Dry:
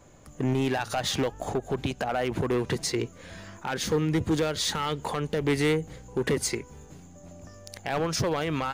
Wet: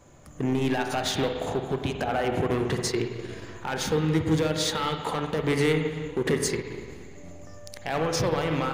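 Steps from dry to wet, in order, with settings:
spring reverb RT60 1.9 s, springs 44/50/58 ms, chirp 40 ms, DRR 2.5 dB
transient designer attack 0 dB, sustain −5 dB

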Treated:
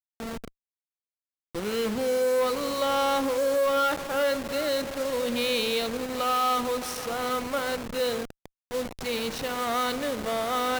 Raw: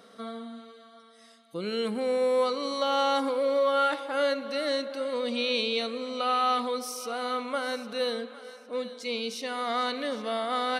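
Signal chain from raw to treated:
hold until the input has moved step −32 dBFS
harmonic generator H 5 −20 dB, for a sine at −15.5 dBFS

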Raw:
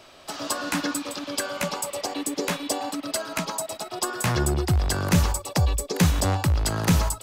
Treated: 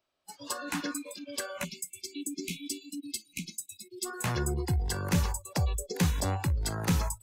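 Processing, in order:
gain on a spectral selection 0:01.64–0:04.06, 390–2,100 Hz −30 dB
noise reduction from a noise print of the clip's start 25 dB
level −7 dB

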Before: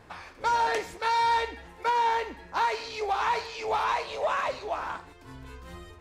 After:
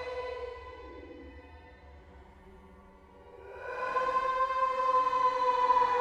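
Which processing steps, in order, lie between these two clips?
source passing by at 0:02.33, 28 m/s, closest 3.7 metres
extreme stretch with random phases 9.3×, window 0.10 s, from 0:01.29
tilt shelving filter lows +6.5 dB, about 1,500 Hz
level +6 dB

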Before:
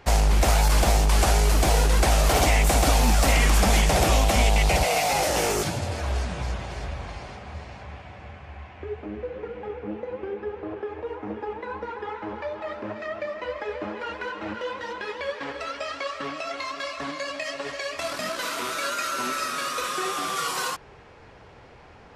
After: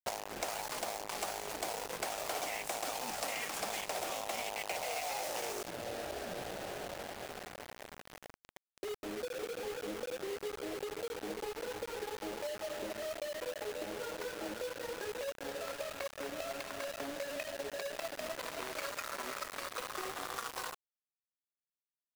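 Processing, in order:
adaptive Wiener filter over 41 samples
high-pass filter 480 Hz 12 dB per octave
downward compressor 5 to 1, threshold −43 dBFS, peak gain reduction 20 dB
bit reduction 8 bits
level +5 dB

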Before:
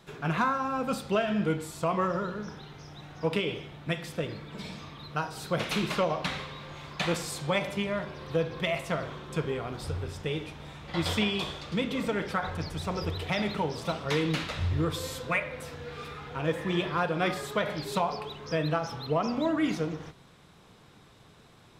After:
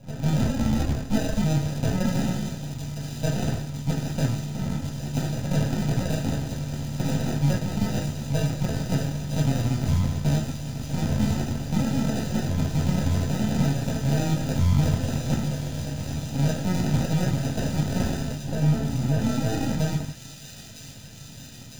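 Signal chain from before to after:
parametric band 470 Hz −7 dB 2.3 octaves
brickwall limiter −28.5 dBFS, peak gain reduction 10.5 dB
0:00.56–0:01.38: frequency shifter −190 Hz
sample-rate reduction 1,100 Hz, jitter 0%
half-wave rectification
0:18.34–0:19.20: high-frequency loss of the air 350 metres
delay with a high-pass on its return 956 ms, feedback 77%, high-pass 3,200 Hz, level −5 dB
convolution reverb, pre-delay 3 ms, DRR 0 dB
level +8 dB

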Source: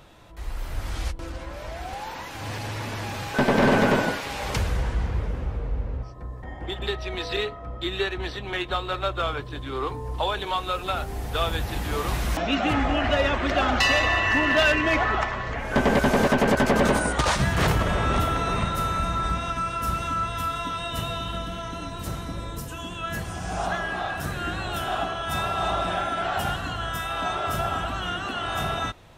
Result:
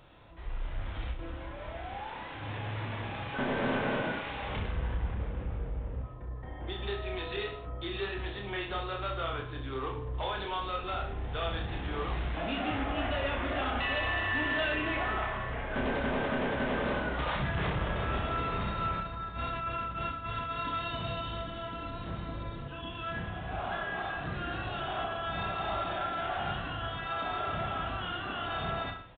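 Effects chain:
0:19.00–0:21.12: compressor whose output falls as the input rises −29 dBFS, ratio −0.5
soft clipping −23 dBFS, distortion −10 dB
reverse bouncing-ball delay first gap 30 ms, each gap 1.15×, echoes 5
downsampling to 8,000 Hz
level −7 dB

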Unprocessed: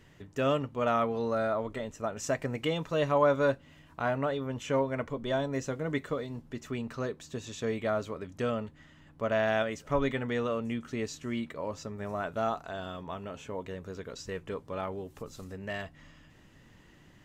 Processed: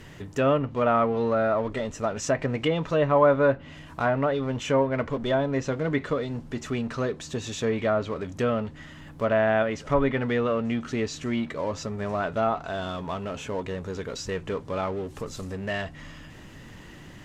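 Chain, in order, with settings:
mu-law and A-law mismatch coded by mu
treble cut that deepens with the level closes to 2,200 Hz, closed at −24 dBFS
level +5 dB

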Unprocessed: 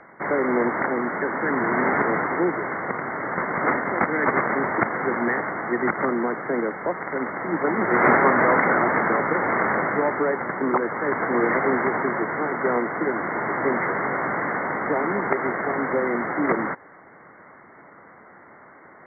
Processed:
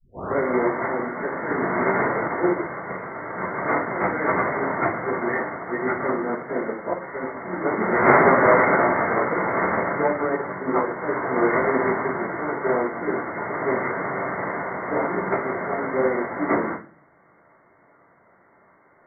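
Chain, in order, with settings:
turntable start at the beginning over 0.35 s
rectangular room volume 52 cubic metres, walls mixed, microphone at 1.7 metres
expander for the loud parts 1.5 to 1, over −29 dBFS
level −6.5 dB

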